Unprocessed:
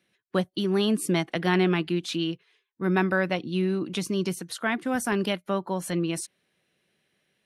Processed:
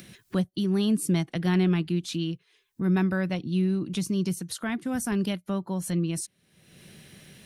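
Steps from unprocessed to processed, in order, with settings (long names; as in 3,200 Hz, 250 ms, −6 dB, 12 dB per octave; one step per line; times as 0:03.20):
upward compression, threshold −27 dBFS
bass and treble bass +14 dB, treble +8 dB
level −7.5 dB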